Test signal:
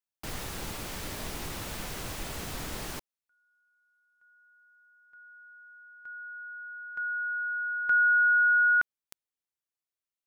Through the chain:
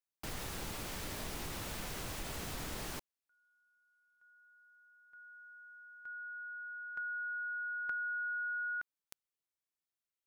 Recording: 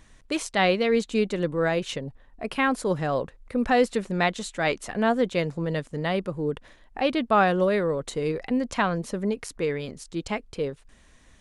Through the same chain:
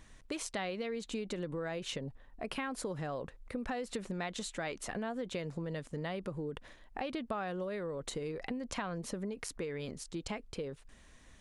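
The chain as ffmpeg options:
ffmpeg -i in.wav -af "acompressor=threshold=-38dB:ratio=6:attack=77:release=47:knee=6:detection=rms,volume=-3dB" out.wav

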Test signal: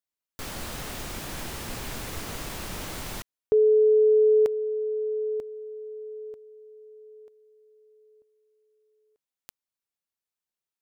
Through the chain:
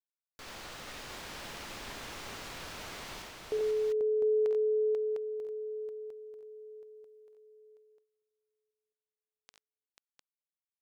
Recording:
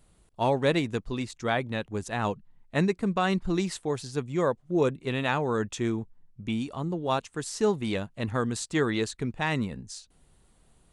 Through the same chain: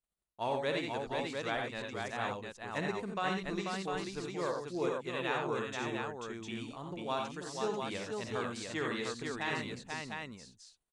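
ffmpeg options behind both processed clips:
ffmpeg -i in.wav -filter_complex "[0:a]acrossover=split=6500[link_01][link_02];[link_02]acompressor=threshold=-52dB:ratio=4:attack=1:release=60[link_03];[link_01][link_03]amix=inputs=2:normalize=0,agate=range=-24dB:threshold=-52dB:ratio=3:release=125:detection=rms,lowshelf=frequency=350:gain=-10.5,aecho=1:1:50|68|88|489|703:0.282|0.422|0.501|0.631|0.596,volume=-7.5dB" out.wav

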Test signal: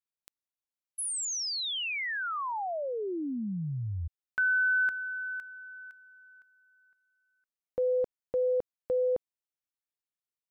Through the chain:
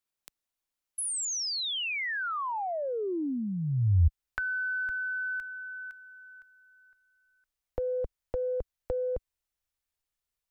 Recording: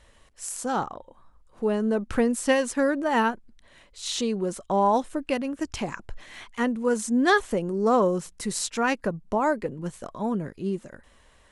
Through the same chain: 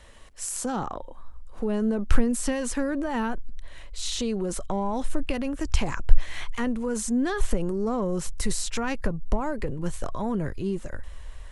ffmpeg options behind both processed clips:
ffmpeg -i in.wav -filter_complex "[0:a]asubboost=boost=10:cutoff=62,acrossover=split=250[link_01][link_02];[link_02]acompressor=threshold=-38dB:ratio=8:attack=8.5:release=20:knee=2.83:detection=peak[link_03];[link_01][link_03]amix=inputs=2:normalize=0,volume=5.5dB" out.wav

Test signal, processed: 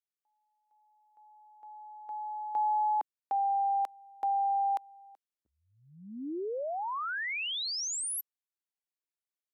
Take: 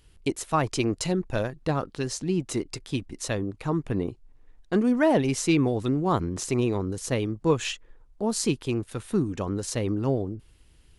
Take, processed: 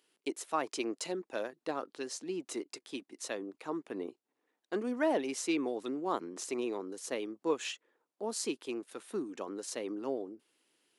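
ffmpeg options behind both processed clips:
ffmpeg -i in.wav -af "highpass=frequency=280:width=0.5412,highpass=frequency=280:width=1.3066,volume=-8dB" out.wav

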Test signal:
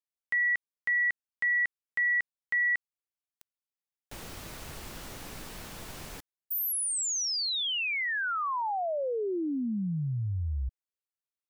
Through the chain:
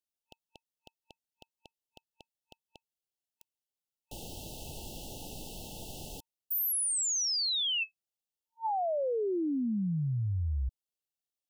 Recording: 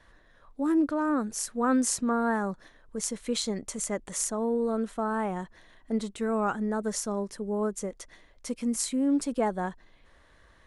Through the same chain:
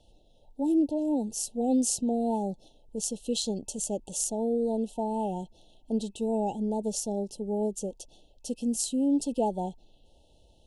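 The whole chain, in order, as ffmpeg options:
ffmpeg -i in.wav -af "afftfilt=real='re*(1-between(b*sr/4096,910,2600))':imag='im*(1-between(b*sr/4096,910,2600))':win_size=4096:overlap=0.75" out.wav

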